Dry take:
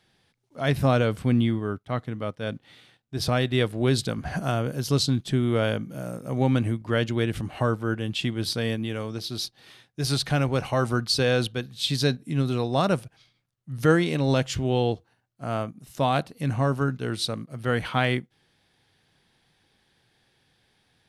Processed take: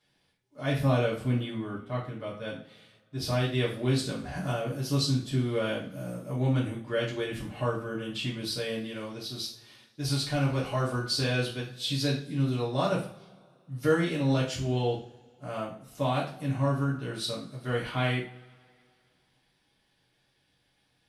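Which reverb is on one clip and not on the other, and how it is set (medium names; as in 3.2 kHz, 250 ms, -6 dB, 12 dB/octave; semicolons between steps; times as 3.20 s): two-slope reverb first 0.39 s, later 2.3 s, from -26 dB, DRR -6.5 dB; trim -12 dB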